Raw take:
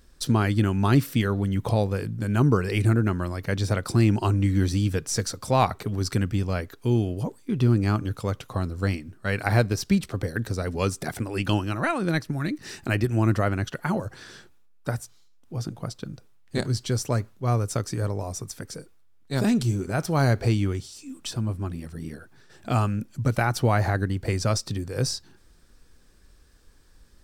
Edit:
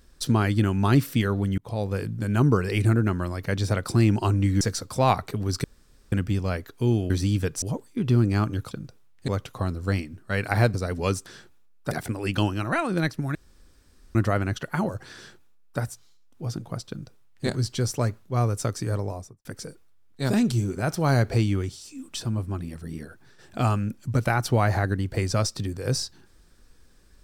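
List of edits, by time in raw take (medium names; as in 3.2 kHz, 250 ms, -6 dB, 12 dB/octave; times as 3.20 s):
1.58–1.97 s: fade in
4.61–5.13 s: move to 7.14 s
6.16 s: insert room tone 0.48 s
9.69–10.50 s: delete
12.46–13.26 s: room tone
14.26–14.91 s: copy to 11.02 s
16.00–16.57 s: copy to 8.23 s
18.14–18.56 s: studio fade out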